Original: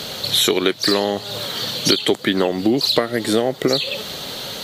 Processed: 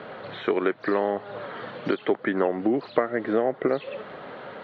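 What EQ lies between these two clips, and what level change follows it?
HPF 390 Hz 6 dB/oct; LPF 1800 Hz 24 dB/oct; notch 860 Hz, Q 27; -2.0 dB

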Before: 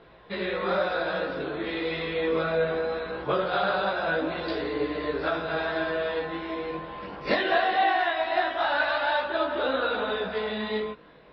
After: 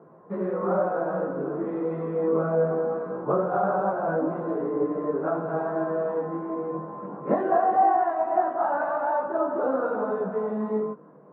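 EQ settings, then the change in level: elliptic band-pass 160–1200 Hz, stop band 80 dB; dynamic EQ 760 Hz, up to +4 dB, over -37 dBFS, Q 4.5; low shelf 290 Hz +9 dB; 0.0 dB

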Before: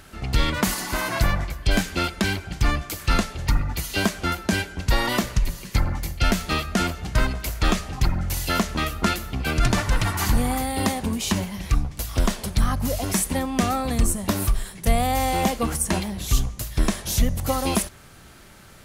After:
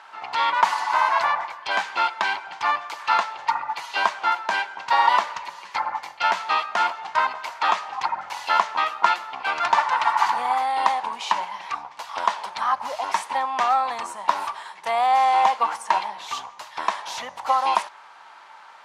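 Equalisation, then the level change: resonant high-pass 920 Hz, resonance Q 6.6; LPF 3900 Hz 12 dB/oct; 0.0 dB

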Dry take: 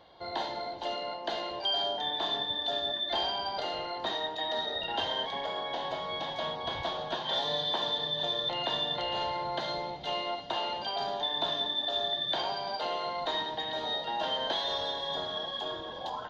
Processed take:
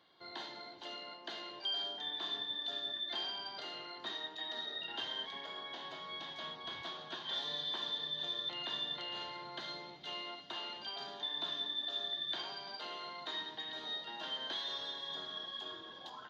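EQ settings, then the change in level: HPF 140 Hz 12 dB/oct; low shelf 390 Hz -4.5 dB; band shelf 670 Hz -9 dB 1.2 oct; -6.5 dB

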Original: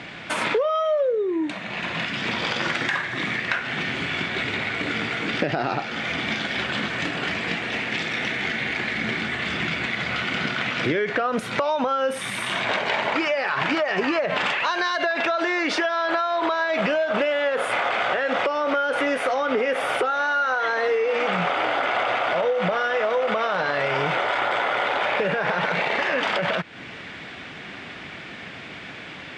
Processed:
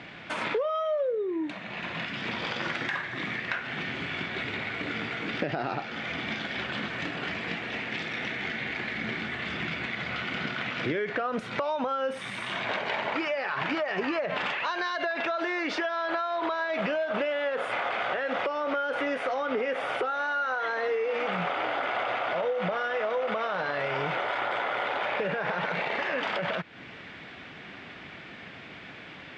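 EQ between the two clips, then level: air absorption 81 m; -6.0 dB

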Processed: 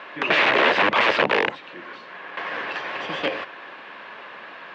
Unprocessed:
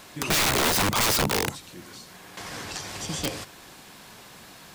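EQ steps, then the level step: speaker cabinet 390–2900 Hz, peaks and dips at 560 Hz +4 dB, 1100 Hz +5 dB, 1700 Hz +6 dB, 2700 Hz +3 dB; notch 750 Hz, Q 24; dynamic EQ 1200 Hz, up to -6 dB, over -38 dBFS, Q 1.6; +7.5 dB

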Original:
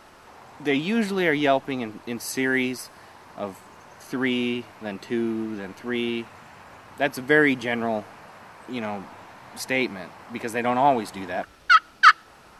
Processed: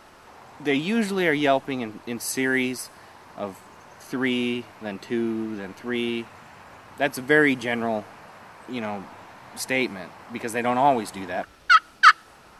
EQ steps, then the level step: dynamic EQ 9200 Hz, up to +5 dB, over -48 dBFS, Q 1.3; 0.0 dB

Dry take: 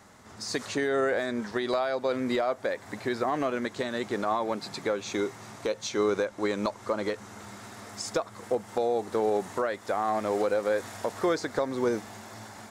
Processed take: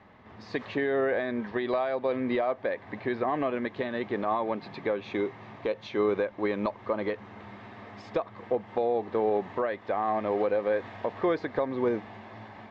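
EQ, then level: LPF 3100 Hz 24 dB/oct; notch 1400 Hz, Q 6.3; 0.0 dB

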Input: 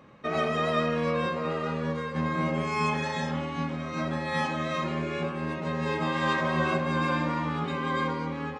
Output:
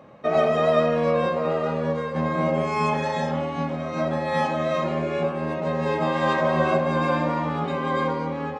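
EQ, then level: HPF 140 Hz 6 dB/oct; low shelf 210 Hz +8 dB; bell 650 Hz +11 dB 0.93 oct; 0.0 dB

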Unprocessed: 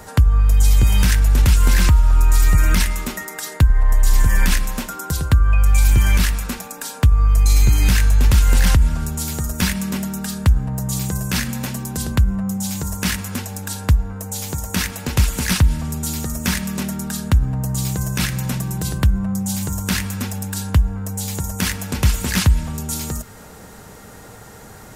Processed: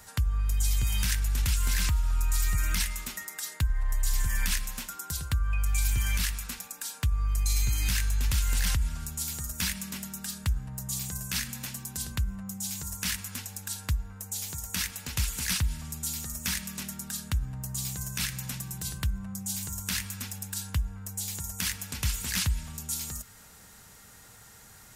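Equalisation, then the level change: passive tone stack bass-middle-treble 5-5-5; 0.0 dB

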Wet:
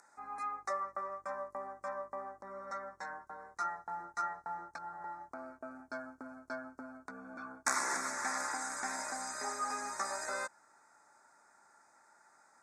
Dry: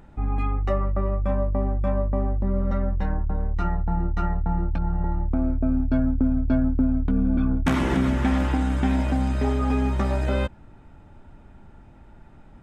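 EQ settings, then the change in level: Butterworth band-stop 3000 Hz, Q 0.54; Butterworth band-pass 4400 Hz, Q 0.75; +14.5 dB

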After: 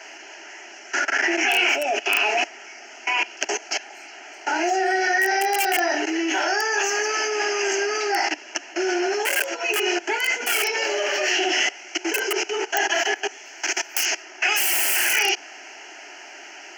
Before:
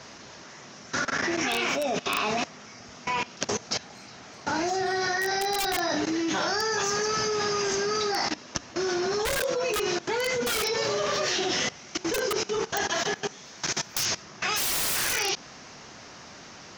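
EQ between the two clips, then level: steep high-pass 340 Hz 36 dB/oct; bell 2900 Hz +12.5 dB 0.47 oct; fixed phaser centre 750 Hz, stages 8; +7.0 dB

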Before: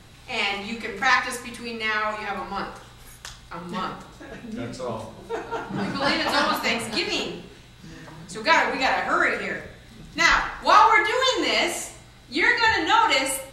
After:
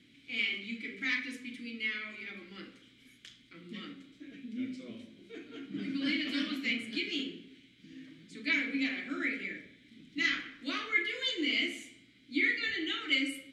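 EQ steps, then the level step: vowel filter i; high shelf 6000 Hz +9.5 dB; +1.5 dB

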